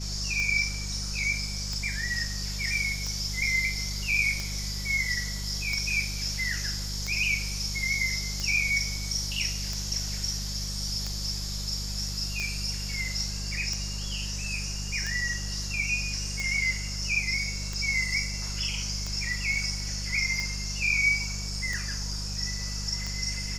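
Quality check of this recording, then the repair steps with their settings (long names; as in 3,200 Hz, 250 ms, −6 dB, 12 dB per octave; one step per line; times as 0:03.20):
mains hum 50 Hz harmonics 4 −35 dBFS
scratch tick 45 rpm −19 dBFS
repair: click removal
hum removal 50 Hz, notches 4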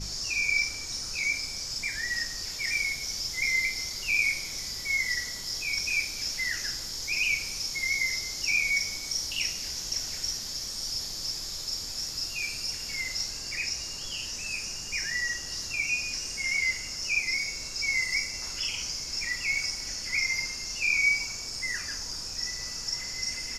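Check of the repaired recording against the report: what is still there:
none of them is left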